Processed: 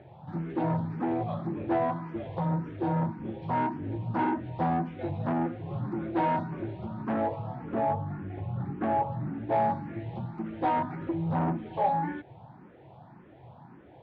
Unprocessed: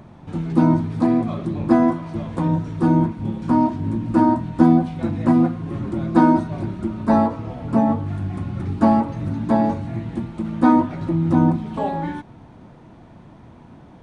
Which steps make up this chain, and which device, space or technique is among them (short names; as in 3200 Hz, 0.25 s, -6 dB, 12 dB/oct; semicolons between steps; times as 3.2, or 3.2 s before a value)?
7.91–9.52 air absorption 220 m; barber-pole phaser into a guitar amplifier (endless phaser +1.8 Hz; soft clip -19 dBFS, distortion -10 dB; speaker cabinet 90–3800 Hz, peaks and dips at 130 Hz +6 dB, 240 Hz -5 dB, 380 Hz +3 dB, 540 Hz +4 dB, 800 Hz +8 dB, 1700 Hz +3 dB); gain -5 dB